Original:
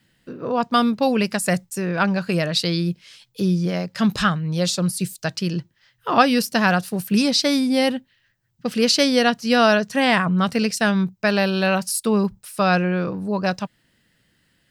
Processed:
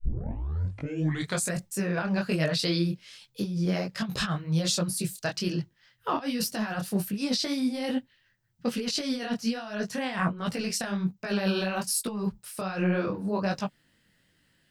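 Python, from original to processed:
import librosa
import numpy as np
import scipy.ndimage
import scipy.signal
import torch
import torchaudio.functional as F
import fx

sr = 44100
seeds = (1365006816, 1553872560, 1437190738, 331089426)

y = fx.tape_start_head(x, sr, length_s=1.58)
y = fx.over_compress(y, sr, threshold_db=-21.0, ratio=-0.5)
y = fx.detune_double(y, sr, cents=43)
y = y * librosa.db_to_amplitude(-2.5)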